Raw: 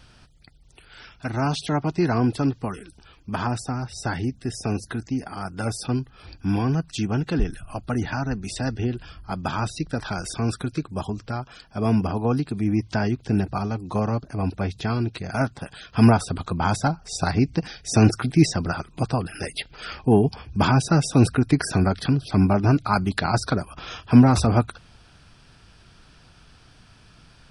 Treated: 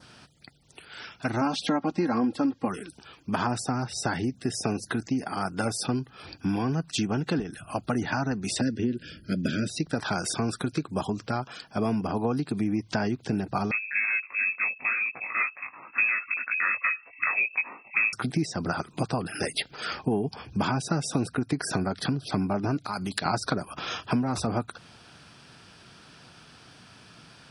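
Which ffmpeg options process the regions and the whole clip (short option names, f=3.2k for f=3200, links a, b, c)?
-filter_complex "[0:a]asettb=1/sr,asplit=3[a][b][c];[a]atrim=end=1.414[d];[b]atrim=start=1.41:end=2.68,asetpts=PTS-STARTPTS,afade=t=in:d=0.004:c=qsin,afade=t=out:st=1.266:d=0.004:c=qsin,lowpass=f=3.9k:p=1,aecho=1:1:3.7:0.84,atrim=end_sample=56007[e];[c]atrim=start=2.676[f];[d][e]acrossfade=d=0.004:c1=hsin:c2=qsin[g];[g][f]acrossfade=d=0.004:c1=qsin:c2=hsin,asettb=1/sr,asplit=3[h][i][j];[h]atrim=end=8.614[k];[i]atrim=start=8.61:end=9.7,asetpts=PTS-STARTPTS,afade=t=in:d=0.004:c=qsin,afade=t=out:st=1.086:d=0.004:c=qsin,asuperstop=centerf=940:order=12:qfactor=1.1,equalizer=f=240:w=1.3:g=7.5[l];[j]atrim=start=9.696[m];[k][l]acrossfade=d=0.004:c1=hsin:c2=qsin[n];[n][m]acrossfade=d=0.004:c1=qsin:c2=hsin,asettb=1/sr,asplit=3[o][p][q];[o]atrim=end=13.714[r];[p]atrim=start=13.71:end=18.13,asetpts=PTS-STARTPTS,afade=t=in:d=0.004:c=qsin,afade=t=out:st=4.416:d=0.004:c=qsin,flanger=delay=18:depth=3:speed=1.8,lowpass=f=2.3k:t=q:w=0.5098,lowpass=f=2.3k:t=q:w=0.6013,lowpass=f=2.3k:t=q:w=0.9,lowpass=f=2.3k:t=q:w=2.563,afreqshift=-2700[s];[q]atrim=start=18.126[t];[r][s]acrossfade=d=0.004:c1=hsin:c2=qsin[u];[u][t]acrossfade=d=0.004:c1=qsin:c2=hsin,asettb=1/sr,asplit=3[v][w][x];[v]atrim=end=22.844[y];[w]atrim=start=22.84:end=23.26,asetpts=PTS-STARTPTS,afade=t=in:d=0.004:c=qsin,afade=t=out:st=0.416:d=0.004:c=qsin,highshelf=f=2.9k:g=10.5,acompressor=threshold=-29dB:ratio=6:attack=3.2:release=140:knee=1:detection=peak[z];[x]atrim=start=23.256[aa];[y][z]acrossfade=d=0.004:c1=hsin:c2=qsin[ab];[ab][aa]acrossfade=d=0.004:c1=qsin:c2=hsin,adynamicequalizer=threshold=0.00562:dfrequency=2700:dqfactor=1.8:tfrequency=2700:tqfactor=1.8:attack=5:release=100:ratio=0.375:range=2:mode=cutabove:tftype=bell,acompressor=threshold=-25dB:ratio=10,highpass=150,volume=3.5dB"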